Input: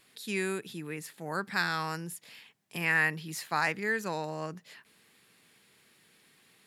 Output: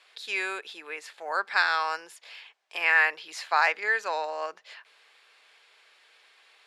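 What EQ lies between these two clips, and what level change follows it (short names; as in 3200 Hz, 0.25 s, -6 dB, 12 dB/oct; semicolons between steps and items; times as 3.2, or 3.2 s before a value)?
HPF 550 Hz 24 dB/oct; LPF 4600 Hz 12 dB/oct; notch 1900 Hz, Q 18; +7.0 dB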